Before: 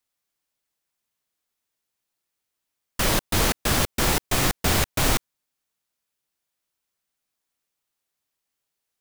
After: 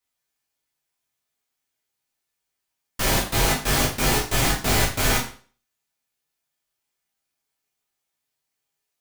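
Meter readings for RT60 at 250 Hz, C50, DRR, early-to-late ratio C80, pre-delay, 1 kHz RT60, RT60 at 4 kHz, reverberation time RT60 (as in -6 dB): 0.40 s, 7.5 dB, -5.0 dB, 12.5 dB, 7 ms, 0.40 s, 0.40 s, 0.45 s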